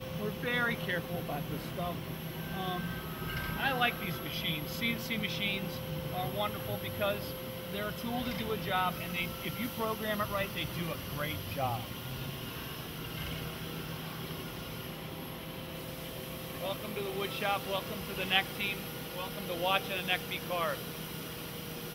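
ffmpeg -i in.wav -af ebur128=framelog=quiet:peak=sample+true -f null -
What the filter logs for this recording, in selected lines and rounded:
Integrated loudness:
  I:         -35.2 LUFS
  Threshold: -45.2 LUFS
Loudness range:
  LRA:         6.9 LU
  Threshold: -55.2 LUFS
  LRA low:   -39.9 LUFS
  LRA high:  -33.0 LUFS
Sample peak:
  Peak:      -13.8 dBFS
True peak:
  Peak:      -13.7 dBFS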